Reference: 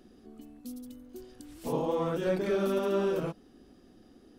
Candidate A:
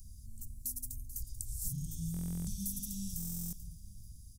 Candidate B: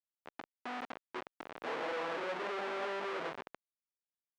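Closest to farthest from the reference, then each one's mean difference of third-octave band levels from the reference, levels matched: B, A; 10.5, 17.0 dB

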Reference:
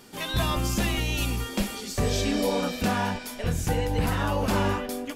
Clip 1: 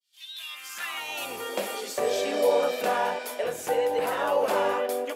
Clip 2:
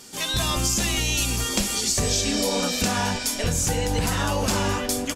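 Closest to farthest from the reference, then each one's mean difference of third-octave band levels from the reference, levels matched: 2, 1; 4.0, 9.0 dB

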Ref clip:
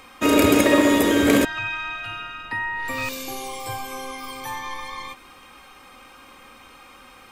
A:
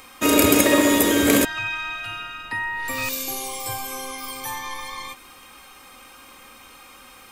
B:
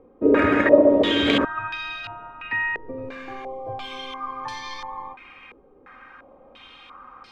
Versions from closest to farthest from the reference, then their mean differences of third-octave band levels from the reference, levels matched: A, B; 2.5, 8.5 dB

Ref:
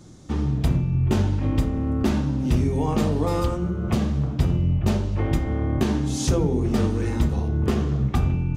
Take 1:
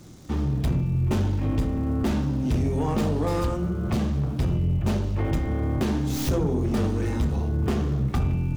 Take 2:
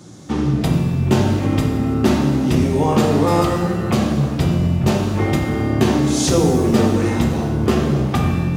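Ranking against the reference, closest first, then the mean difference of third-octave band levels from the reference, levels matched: 1, 2; 2.0, 5.0 dB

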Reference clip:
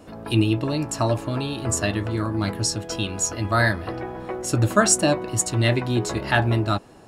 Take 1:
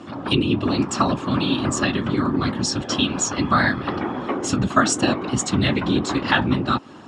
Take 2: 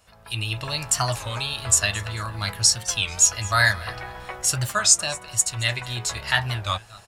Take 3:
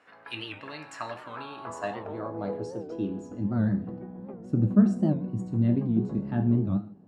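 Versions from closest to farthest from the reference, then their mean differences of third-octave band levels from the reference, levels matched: 1, 2, 3; 5.5, 8.0, 11.0 dB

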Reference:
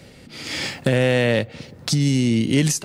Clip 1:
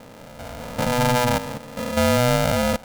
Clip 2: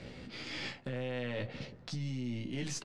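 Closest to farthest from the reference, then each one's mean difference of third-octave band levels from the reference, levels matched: 2, 1; 6.5, 10.5 dB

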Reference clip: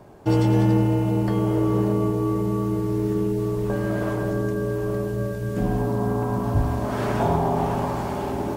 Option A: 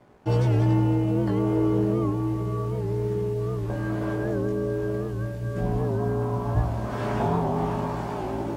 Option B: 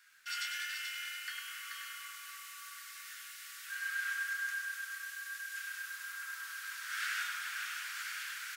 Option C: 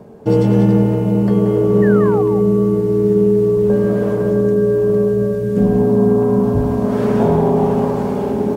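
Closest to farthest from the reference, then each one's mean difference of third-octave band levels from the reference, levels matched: A, C, B; 3.0, 6.5, 27.5 dB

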